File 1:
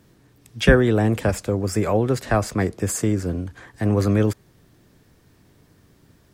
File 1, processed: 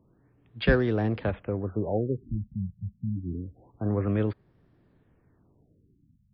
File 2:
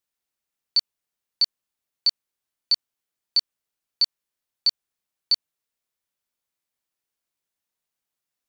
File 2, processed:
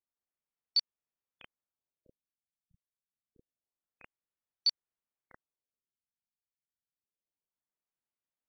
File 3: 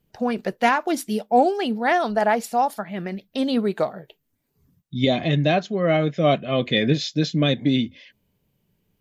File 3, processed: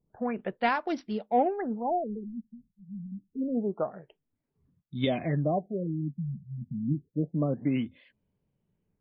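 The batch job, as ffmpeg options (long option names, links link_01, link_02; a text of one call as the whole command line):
ffmpeg -i in.wav -af "adynamicsmooth=sensitivity=4:basefreq=2300,afftfilt=real='re*lt(b*sr/1024,210*pow(5900/210,0.5+0.5*sin(2*PI*0.27*pts/sr)))':imag='im*lt(b*sr/1024,210*pow(5900/210,0.5+0.5*sin(2*PI*0.27*pts/sr)))':win_size=1024:overlap=0.75,volume=-7.5dB" out.wav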